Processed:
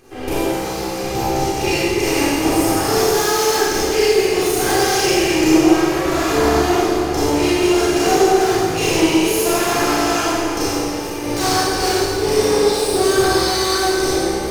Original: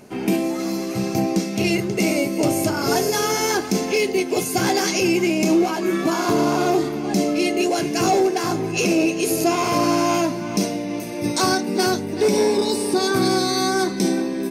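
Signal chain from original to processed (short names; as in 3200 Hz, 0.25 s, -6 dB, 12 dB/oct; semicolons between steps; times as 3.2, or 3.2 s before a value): minimum comb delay 2.5 ms; Schroeder reverb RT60 1.9 s, combs from 28 ms, DRR -9 dB; gain -4 dB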